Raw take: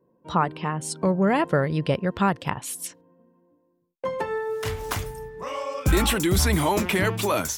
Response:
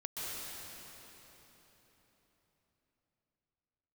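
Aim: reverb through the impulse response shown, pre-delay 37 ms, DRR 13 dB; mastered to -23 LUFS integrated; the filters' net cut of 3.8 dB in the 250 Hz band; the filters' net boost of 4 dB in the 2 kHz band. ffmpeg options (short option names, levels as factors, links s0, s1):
-filter_complex "[0:a]equalizer=f=250:t=o:g=-6,equalizer=f=2000:t=o:g=5,asplit=2[s0][s1];[1:a]atrim=start_sample=2205,adelay=37[s2];[s1][s2]afir=irnorm=-1:irlink=0,volume=0.168[s3];[s0][s3]amix=inputs=2:normalize=0,volume=1.19"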